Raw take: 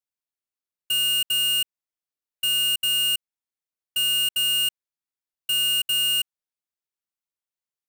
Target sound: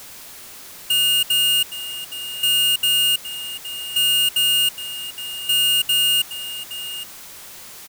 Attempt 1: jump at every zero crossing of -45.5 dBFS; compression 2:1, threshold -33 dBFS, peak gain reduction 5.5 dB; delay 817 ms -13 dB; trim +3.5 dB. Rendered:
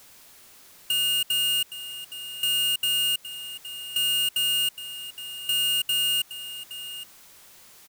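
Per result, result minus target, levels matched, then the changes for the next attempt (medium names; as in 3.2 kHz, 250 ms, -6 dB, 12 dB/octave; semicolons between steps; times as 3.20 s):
jump at every zero crossing: distortion -11 dB; compression: peak gain reduction +5.5 dB
change: jump at every zero crossing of -33.5 dBFS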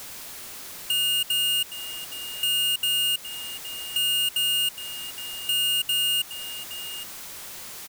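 compression: peak gain reduction +6 dB
remove: compression 2:1, threshold -33 dBFS, peak gain reduction 6 dB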